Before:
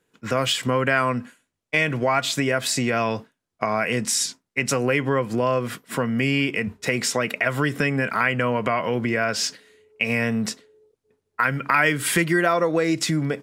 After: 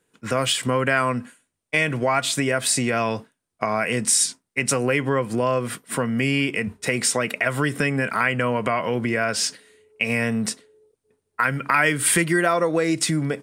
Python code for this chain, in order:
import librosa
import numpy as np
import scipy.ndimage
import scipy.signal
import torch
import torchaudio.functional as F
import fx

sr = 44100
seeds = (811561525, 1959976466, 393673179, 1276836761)

y = fx.peak_eq(x, sr, hz=9000.0, db=12.5, octaves=0.24)